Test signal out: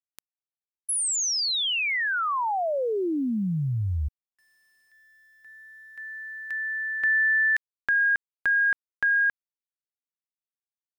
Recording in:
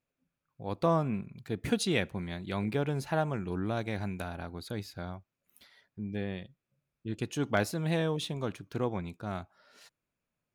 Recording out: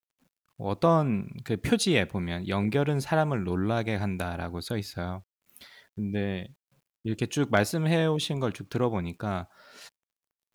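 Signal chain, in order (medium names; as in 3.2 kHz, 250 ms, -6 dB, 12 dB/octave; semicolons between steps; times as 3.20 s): in parallel at -2.5 dB: compression 5:1, threshold -42 dBFS; on the sum: word length cut 12-bit, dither none; trim +4 dB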